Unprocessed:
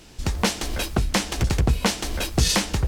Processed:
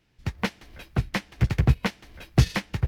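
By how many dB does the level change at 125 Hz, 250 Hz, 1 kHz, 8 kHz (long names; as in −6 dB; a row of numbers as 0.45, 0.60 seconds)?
+1.0, −3.0, −6.5, −16.5 decibels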